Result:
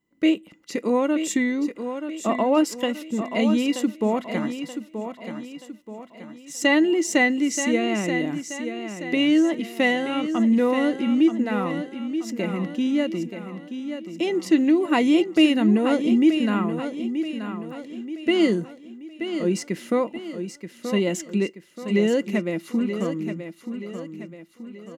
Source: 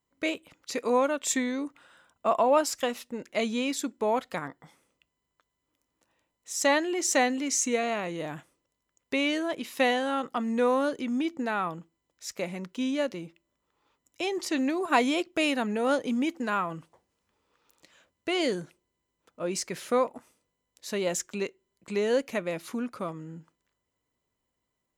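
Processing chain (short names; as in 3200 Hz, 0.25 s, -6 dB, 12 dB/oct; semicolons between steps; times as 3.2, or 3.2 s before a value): small resonant body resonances 210/310/2000/2800 Hz, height 16 dB, ringing for 55 ms; on a send: feedback echo 0.929 s, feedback 45%, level -9 dB; on the sum: gain -2 dB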